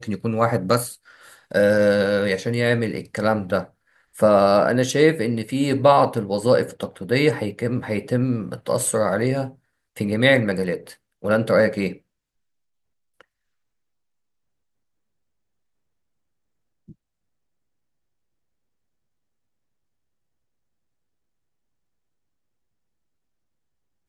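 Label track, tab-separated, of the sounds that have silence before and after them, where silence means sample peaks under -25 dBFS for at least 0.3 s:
1.520000	3.620000	sound
4.200000	9.470000	sound
9.970000	10.750000	sound
11.240000	11.920000	sound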